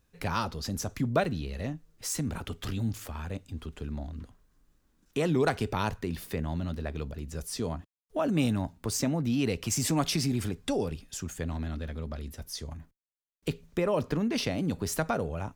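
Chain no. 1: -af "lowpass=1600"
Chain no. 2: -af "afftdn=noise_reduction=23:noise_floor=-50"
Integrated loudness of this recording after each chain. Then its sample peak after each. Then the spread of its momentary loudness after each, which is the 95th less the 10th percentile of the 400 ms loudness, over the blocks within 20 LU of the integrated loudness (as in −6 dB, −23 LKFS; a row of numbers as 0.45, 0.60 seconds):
−32.5, −32.0 LKFS; −12.5, −12.0 dBFS; 13, 12 LU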